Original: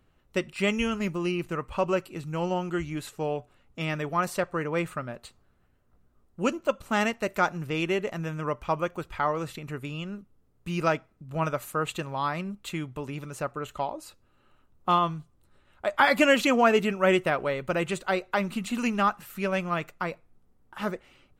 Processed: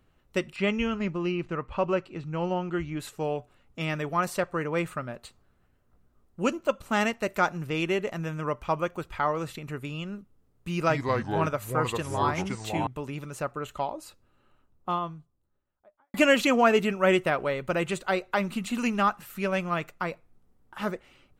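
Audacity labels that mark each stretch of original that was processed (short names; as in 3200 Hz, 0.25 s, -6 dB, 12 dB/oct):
0.560000	3.000000	air absorption 140 m
10.710000	12.870000	echoes that change speed 0.185 s, each echo -4 st, echoes 2
13.940000	16.140000	studio fade out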